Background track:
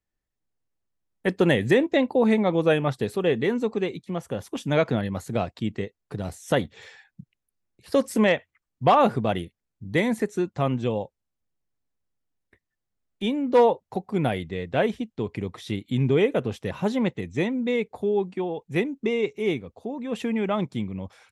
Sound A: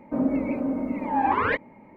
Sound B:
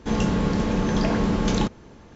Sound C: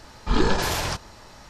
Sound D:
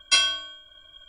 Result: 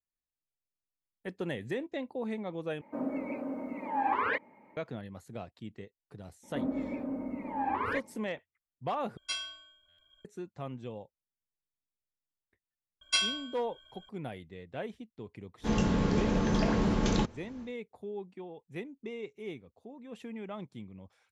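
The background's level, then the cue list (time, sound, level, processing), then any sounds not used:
background track −16 dB
0:02.81: overwrite with A −5.5 dB + high-pass filter 440 Hz 6 dB per octave
0:06.43: mix in A −9.5 dB
0:09.17: overwrite with D −16.5 dB + buffer that repeats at 0:00.71
0:13.01: mix in D −8.5 dB
0:15.58: mix in B −5.5 dB, fades 0.10 s
not used: C

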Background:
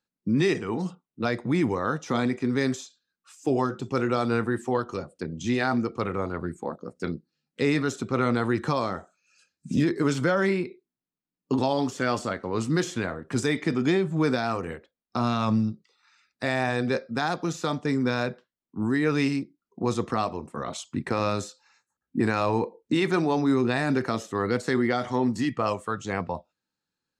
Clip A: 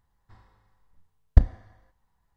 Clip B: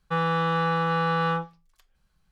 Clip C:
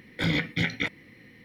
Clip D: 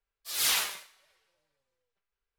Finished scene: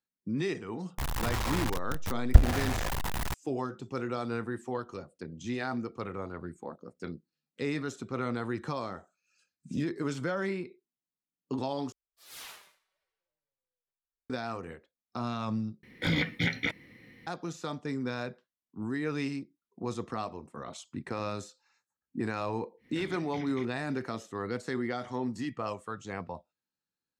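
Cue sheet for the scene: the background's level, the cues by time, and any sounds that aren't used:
background −9 dB
0:00.98: mix in A −1 dB + converter with a step at zero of −24 dBFS
0:11.92: overwrite with D −14 dB + high-shelf EQ 2,000 Hz −7 dB
0:15.83: overwrite with C −2.5 dB
0:22.77: mix in C −11 dB, fades 0.10 s + downward compressor, threshold −30 dBFS
not used: B

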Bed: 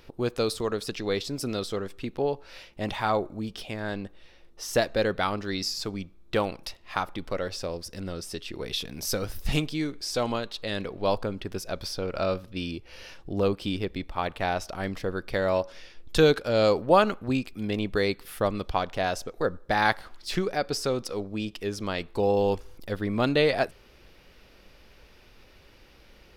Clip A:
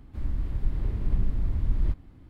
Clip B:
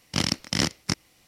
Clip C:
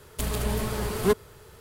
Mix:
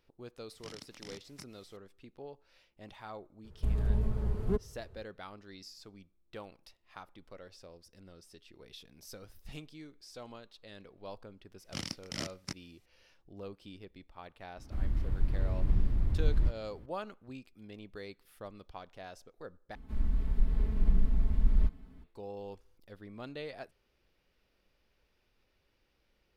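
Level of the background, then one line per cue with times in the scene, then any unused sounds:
bed −20 dB
0:00.50: mix in B −9 dB + downward compressor 3 to 1, threshold −41 dBFS
0:03.44: mix in C −17 dB + spectral tilt −4.5 dB per octave
0:11.59: mix in B −14.5 dB + notch filter 920 Hz, Q 13
0:14.57: mix in A −2.5 dB
0:19.75: overwrite with A −5 dB + comb filter 4.6 ms, depth 100%

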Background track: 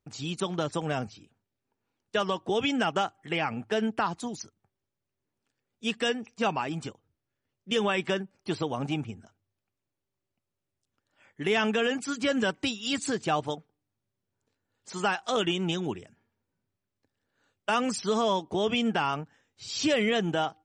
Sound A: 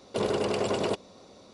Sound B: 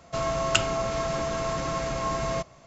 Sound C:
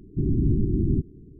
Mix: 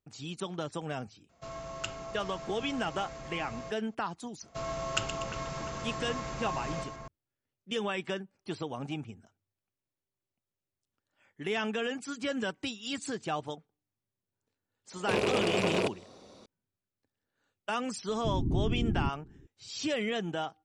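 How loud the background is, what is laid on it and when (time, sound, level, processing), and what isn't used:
background track −6.5 dB
0:01.29: mix in B −14.5 dB
0:04.42: mix in B −8.5 dB + echo with a time of its own for lows and highs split 2,300 Hz, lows 351 ms, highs 121 ms, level −8 dB
0:14.93: mix in A −1.5 dB + loose part that buzzes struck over −37 dBFS, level −21 dBFS
0:18.08: mix in C −8 dB

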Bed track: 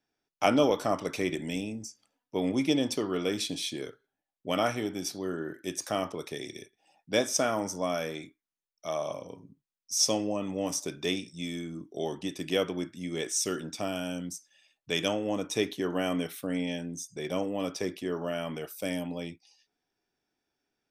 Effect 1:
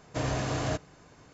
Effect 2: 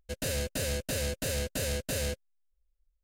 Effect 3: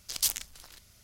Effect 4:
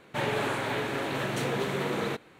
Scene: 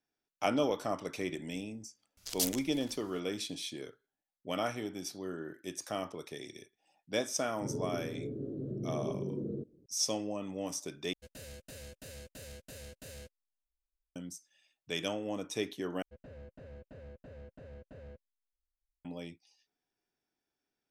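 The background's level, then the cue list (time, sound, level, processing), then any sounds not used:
bed track −6.5 dB
0:02.17: mix in 3 −5 dB
0:07.47: mix in 4 −3.5 dB + inverse Chebyshev low-pass filter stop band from 820 Hz
0:11.13: overwrite with 2 −16.5 dB
0:16.02: overwrite with 2 −16.5 dB + low-pass filter 1,200 Hz
not used: 1

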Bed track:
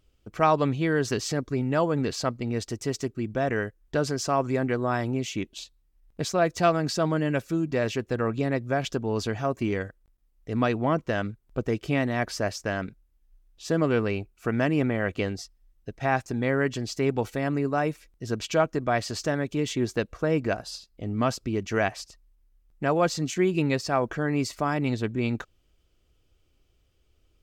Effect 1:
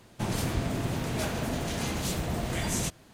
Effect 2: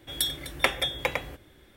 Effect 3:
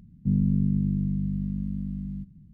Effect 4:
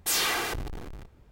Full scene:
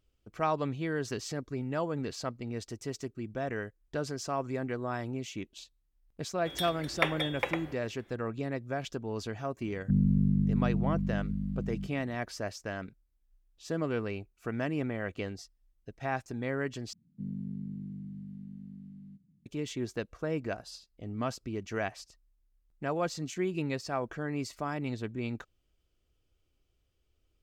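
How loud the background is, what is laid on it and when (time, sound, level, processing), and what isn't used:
bed track −8.5 dB
0:06.38: mix in 2 −3 dB + bass and treble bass −8 dB, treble −12 dB
0:09.63: mix in 3 −2.5 dB
0:16.93: overwrite with 3 −12 dB + high-pass filter 170 Hz
not used: 1, 4

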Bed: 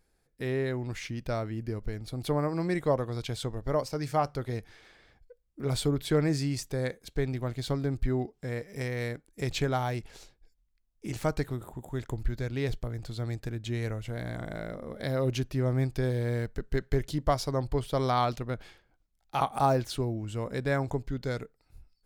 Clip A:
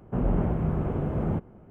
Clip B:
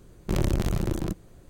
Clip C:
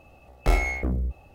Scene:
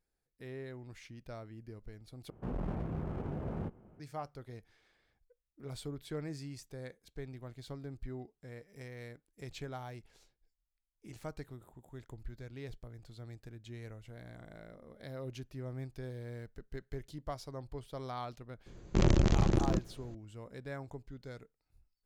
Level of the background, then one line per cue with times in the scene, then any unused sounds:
bed −14.5 dB
0:02.30: overwrite with A −8.5 dB + asymmetric clip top −32.5 dBFS, bottom −19.5 dBFS
0:18.66: mix in B −1 dB + downsampling to 16,000 Hz
not used: C

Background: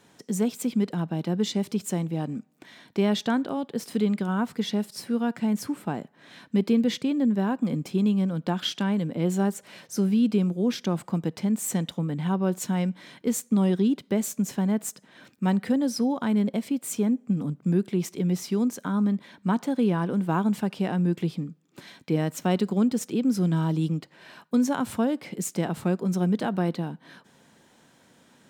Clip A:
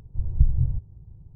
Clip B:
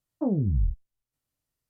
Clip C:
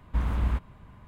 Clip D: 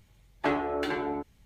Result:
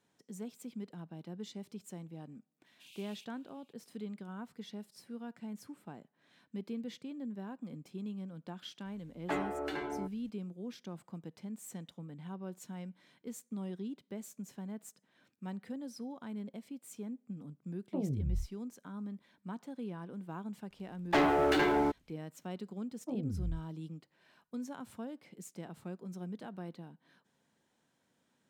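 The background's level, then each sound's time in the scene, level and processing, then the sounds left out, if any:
background −18.5 dB
0:02.66: mix in C −2 dB + Butterworth high-pass 2,500 Hz 96 dB per octave
0:08.85: mix in D −7.5 dB
0:17.72: mix in B −9.5 dB
0:20.69: mix in D −6 dB, fades 0.05 s + leveller curve on the samples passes 3
0:22.86: mix in B −12.5 dB
not used: A

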